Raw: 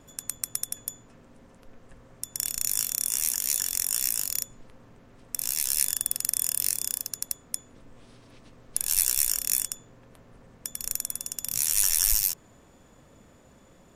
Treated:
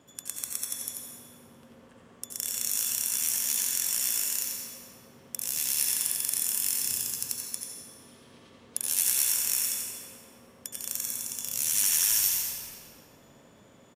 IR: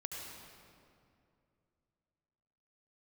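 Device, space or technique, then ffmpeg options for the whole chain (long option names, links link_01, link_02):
PA in a hall: -filter_complex "[0:a]highpass=130,equalizer=frequency=3200:width_type=o:width=0.25:gain=5.5,aecho=1:1:88:0.501[link_01];[1:a]atrim=start_sample=2205[link_02];[link_01][link_02]afir=irnorm=-1:irlink=0,asettb=1/sr,asplit=3[link_03][link_04][link_05];[link_03]atrim=end=6.834[link_06];[link_04]atrim=start=6.83:end=7.4,asetpts=PTS-STARTPTS,afade=type=in:duration=0.004:curve=qsin,afade=type=out:start_time=0.566:duration=0.004:curve=qsin,bass=frequency=250:gain=6,treble=frequency=4000:gain=1[link_07];[link_05]atrim=start=7.396[link_08];[link_06][link_07]acrossfade=duration=0.004:curve1=hsin:curve2=qsin[link_09];[link_09][link_08]acrossfade=duration=0.004:curve1=qsin:curve2=hsin"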